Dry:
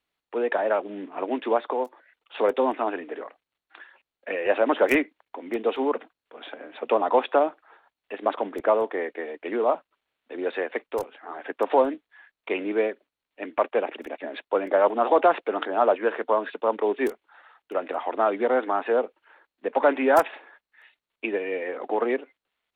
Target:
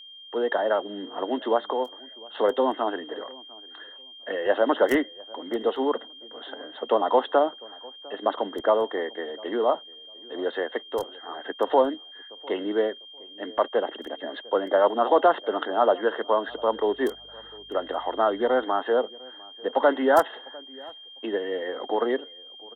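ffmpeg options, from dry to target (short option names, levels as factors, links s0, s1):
-filter_complex "[0:a]asplit=2[s0][s1];[s1]adelay=701,lowpass=f=990:p=1,volume=0.0794,asplit=2[s2][s3];[s3]adelay=701,lowpass=f=990:p=1,volume=0.26[s4];[s0][s2][s4]amix=inputs=3:normalize=0,asettb=1/sr,asplit=3[s5][s6][s7];[s5]atrim=end=16.484[s8];[s6]atrim=start=16.48:end=18.64,asetpts=PTS-STARTPTS,afade=t=in:d=0.004:c=qsin,afade=t=out:st=2.156:d=0.004:c=qsin,aeval=exprs='val(0)+0.00112*(sin(2*PI*50*n/s)+sin(2*PI*2*50*n/s)/2+sin(2*PI*3*50*n/s)/3+sin(2*PI*4*50*n/s)/4+sin(2*PI*5*50*n/s)/5)':c=same[s9];[s7]atrim=start=18.636[s10];[s8][s9]acrossfade=d=0.004:c1=hsin:c2=qsin[s11];[s11][s10]acrossfade=d=0.004:c1=qsin:c2=hsin,asuperstop=centerf=2400:order=4:qfactor=2.8,aeval=exprs='val(0)+0.00708*sin(2*PI*3200*n/s)':c=same"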